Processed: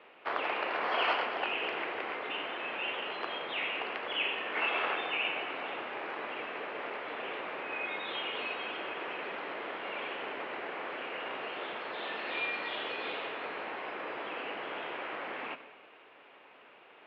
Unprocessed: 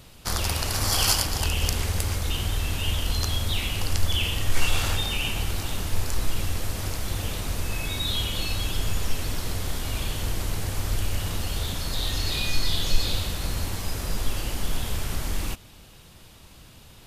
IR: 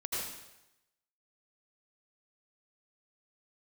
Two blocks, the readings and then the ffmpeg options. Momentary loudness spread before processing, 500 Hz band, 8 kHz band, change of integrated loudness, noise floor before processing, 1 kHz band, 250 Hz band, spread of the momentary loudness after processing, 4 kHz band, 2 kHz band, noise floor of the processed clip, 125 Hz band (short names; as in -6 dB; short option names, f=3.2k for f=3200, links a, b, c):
6 LU, 0.0 dB, under -40 dB, -7.5 dB, -49 dBFS, +1.0 dB, -10.0 dB, 7 LU, -10.5 dB, 0.0 dB, -57 dBFS, -36.5 dB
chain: -filter_complex "[0:a]asplit=2[a][b];[1:a]atrim=start_sample=2205[c];[b][c]afir=irnorm=-1:irlink=0,volume=-14dB[d];[a][d]amix=inputs=2:normalize=0,highpass=f=450:t=q:w=0.5412,highpass=f=450:t=q:w=1.307,lowpass=f=2.7k:t=q:w=0.5176,lowpass=f=2.7k:t=q:w=0.7071,lowpass=f=2.7k:t=q:w=1.932,afreqshift=-68"